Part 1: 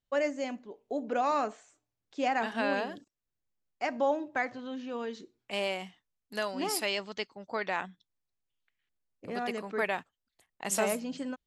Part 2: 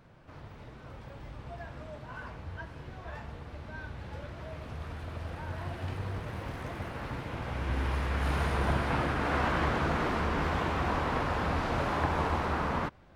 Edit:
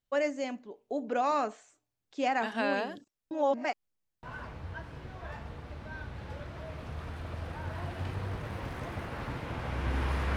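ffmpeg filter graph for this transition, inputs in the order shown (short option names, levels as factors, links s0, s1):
-filter_complex "[0:a]apad=whole_dur=10.36,atrim=end=10.36,asplit=2[s0][s1];[s0]atrim=end=3.312[s2];[s1]atrim=start=3.308:end=4.232,asetpts=PTS-STARTPTS,areverse[s3];[1:a]atrim=start=2.058:end=8.19[s4];[s2][s3]acrossfade=d=0.004:c1=hsin:c2=hsin[s5];[s5][s4]acrossfade=d=0.004:c1=hsin:c2=hsin"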